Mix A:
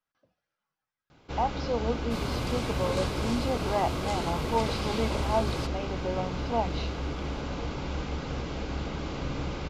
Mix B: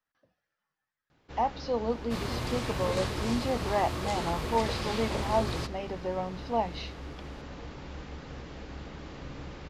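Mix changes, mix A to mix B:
first sound -9.0 dB; master: remove notch 1800 Hz, Q 6.7

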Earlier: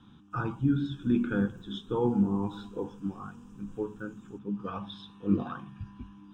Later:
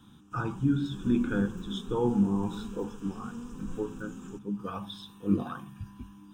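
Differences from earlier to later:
speech: remove LPF 4000 Hz 12 dB/oct; background +11.5 dB

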